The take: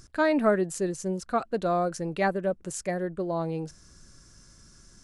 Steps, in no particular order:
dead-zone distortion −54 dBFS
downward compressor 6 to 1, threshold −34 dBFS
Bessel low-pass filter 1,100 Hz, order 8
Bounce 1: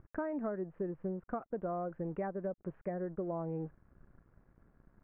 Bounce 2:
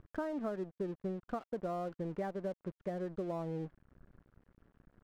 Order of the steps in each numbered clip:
dead-zone distortion, then downward compressor, then Bessel low-pass filter
downward compressor, then Bessel low-pass filter, then dead-zone distortion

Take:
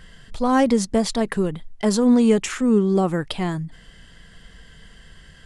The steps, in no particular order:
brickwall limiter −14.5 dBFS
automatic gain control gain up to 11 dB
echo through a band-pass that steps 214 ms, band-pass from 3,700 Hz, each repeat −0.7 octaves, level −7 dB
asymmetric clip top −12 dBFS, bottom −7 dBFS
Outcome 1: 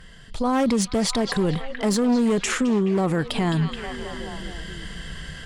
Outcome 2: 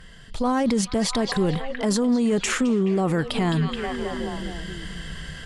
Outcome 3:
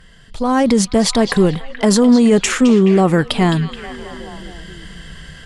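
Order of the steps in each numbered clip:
automatic gain control, then asymmetric clip, then echo through a band-pass that steps, then brickwall limiter
asymmetric clip, then echo through a band-pass that steps, then automatic gain control, then brickwall limiter
brickwall limiter, then asymmetric clip, then automatic gain control, then echo through a band-pass that steps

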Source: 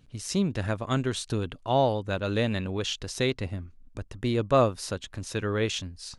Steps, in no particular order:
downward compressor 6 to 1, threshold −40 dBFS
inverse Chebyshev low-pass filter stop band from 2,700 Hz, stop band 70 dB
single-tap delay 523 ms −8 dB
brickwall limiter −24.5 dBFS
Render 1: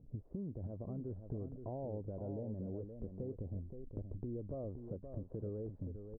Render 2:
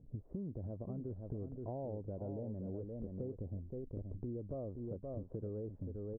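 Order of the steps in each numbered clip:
brickwall limiter, then inverse Chebyshev low-pass filter, then downward compressor, then single-tap delay
inverse Chebyshev low-pass filter, then brickwall limiter, then single-tap delay, then downward compressor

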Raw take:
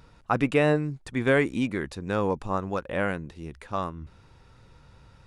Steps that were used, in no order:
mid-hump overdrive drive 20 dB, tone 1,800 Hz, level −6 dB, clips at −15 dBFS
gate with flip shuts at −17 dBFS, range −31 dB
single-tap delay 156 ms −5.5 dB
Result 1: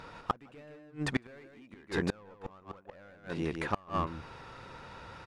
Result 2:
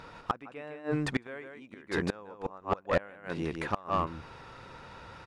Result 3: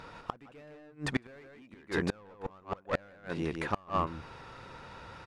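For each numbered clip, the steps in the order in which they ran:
mid-hump overdrive, then single-tap delay, then gate with flip
single-tap delay, then gate with flip, then mid-hump overdrive
single-tap delay, then mid-hump overdrive, then gate with flip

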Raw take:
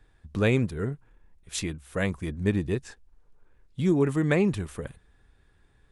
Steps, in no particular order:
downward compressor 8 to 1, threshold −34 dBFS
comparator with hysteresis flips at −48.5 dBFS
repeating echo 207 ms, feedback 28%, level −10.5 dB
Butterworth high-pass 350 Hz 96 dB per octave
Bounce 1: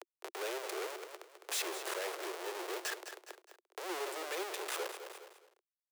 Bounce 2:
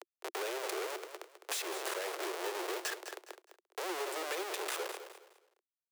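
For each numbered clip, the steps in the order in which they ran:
comparator with hysteresis, then repeating echo, then downward compressor, then Butterworth high-pass
comparator with hysteresis, then Butterworth high-pass, then downward compressor, then repeating echo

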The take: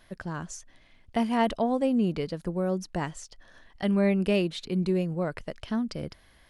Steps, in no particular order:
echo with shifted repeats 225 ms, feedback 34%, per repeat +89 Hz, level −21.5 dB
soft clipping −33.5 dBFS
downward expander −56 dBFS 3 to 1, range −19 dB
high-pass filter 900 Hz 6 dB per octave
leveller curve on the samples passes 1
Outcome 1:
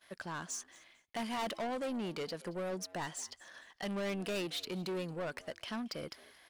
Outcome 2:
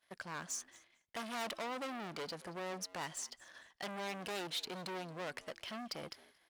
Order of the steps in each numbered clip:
high-pass filter, then soft clipping, then leveller curve on the samples, then echo with shifted repeats, then downward expander
leveller curve on the samples, then soft clipping, then echo with shifted repeats, then high-pass filter, then downward expander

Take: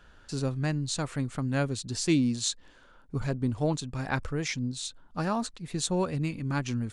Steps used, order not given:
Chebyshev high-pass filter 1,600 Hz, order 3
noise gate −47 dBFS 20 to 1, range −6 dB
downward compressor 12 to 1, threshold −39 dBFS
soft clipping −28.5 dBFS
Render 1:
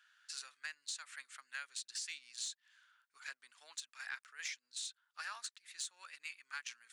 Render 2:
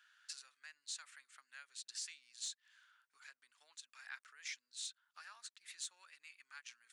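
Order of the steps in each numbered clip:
Chebyshev high-pass filter, then downward compressor, then soft clipping, then noise gate
downward compressor, then noise gate, then Chebyshev high-pass filter, then soft clipping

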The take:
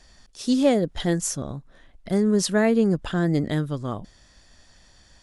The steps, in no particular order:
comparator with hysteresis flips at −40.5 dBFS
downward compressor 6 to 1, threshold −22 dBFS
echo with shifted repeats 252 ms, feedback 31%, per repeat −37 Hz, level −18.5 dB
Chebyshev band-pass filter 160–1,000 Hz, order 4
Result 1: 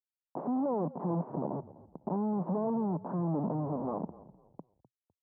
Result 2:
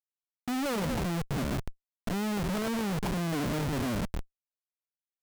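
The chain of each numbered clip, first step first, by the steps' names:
downward compressor, then comparator with hysteresis, then Chebyshev band-pass filter, then echo with shifted repeats
Chebyshev band-pass filter, then downward compressor, then echo with shifted repeats, then comparator with hysteresis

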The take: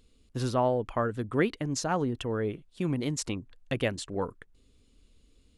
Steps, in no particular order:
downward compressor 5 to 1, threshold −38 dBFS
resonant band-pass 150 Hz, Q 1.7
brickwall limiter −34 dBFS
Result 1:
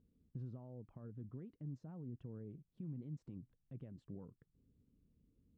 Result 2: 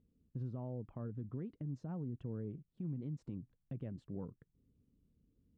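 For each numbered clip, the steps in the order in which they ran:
downward compressor, then brickwall limiter, then resonant band-pass
resonant band-pass, then downward compressor, then brickwall limiter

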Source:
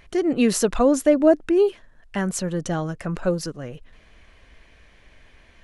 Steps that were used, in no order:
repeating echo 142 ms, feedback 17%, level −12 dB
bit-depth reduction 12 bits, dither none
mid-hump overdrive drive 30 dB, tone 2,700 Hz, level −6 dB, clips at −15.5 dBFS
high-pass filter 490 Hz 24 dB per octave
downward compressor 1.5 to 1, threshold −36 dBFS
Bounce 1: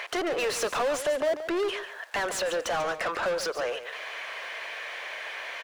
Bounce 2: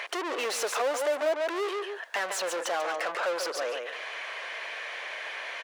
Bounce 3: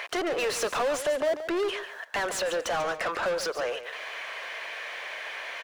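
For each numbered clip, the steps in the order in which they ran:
bit-depth reduction, then high-pass filter, then mid-hump overdrive, then downward compressor, then repeating echo
repeating echo, then mid-hump overdrive, then high-pass filter, then bit-depth reduction, then downward compressor
high-pass filter, then bit-depth reduction, then mid-hump overdrive, then downward compressor, then repeating echo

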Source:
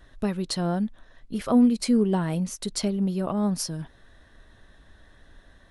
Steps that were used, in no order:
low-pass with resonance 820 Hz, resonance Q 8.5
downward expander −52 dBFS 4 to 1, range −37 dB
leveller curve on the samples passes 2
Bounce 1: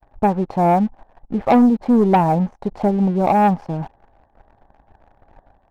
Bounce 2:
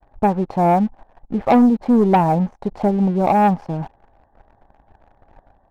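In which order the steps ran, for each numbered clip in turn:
low-pass with resonance, then leveller curve on the samples, then downward expander
downward expander, then low-pass with resonance, then leveller curve on the samples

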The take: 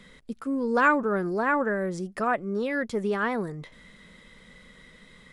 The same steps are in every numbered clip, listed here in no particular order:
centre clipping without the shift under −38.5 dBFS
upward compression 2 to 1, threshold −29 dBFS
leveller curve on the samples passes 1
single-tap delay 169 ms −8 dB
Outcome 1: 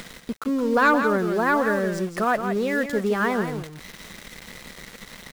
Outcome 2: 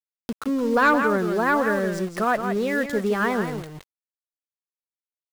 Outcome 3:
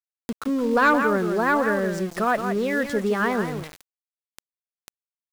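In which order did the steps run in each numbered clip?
upward compression, then centre clipping without the shift, then leveller curve on the samples, then single-tap delay
centre clipping without the shift, then single-tap delay, then upward compression, then leveller curve on the samples
single-tap delay, then centre clipping without the shift, then upward compression, then leveller curve on the samples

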